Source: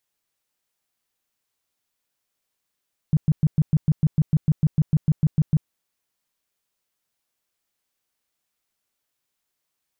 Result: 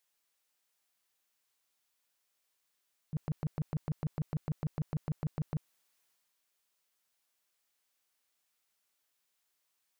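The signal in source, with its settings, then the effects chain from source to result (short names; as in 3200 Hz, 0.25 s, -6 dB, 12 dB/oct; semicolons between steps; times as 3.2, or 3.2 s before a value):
tone bursts 153 Hz, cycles 6, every 0.15 s, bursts 17, -13 dBFS
low shelf 370 Hz -10 dB; transient shaper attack -12 dB, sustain +4 dB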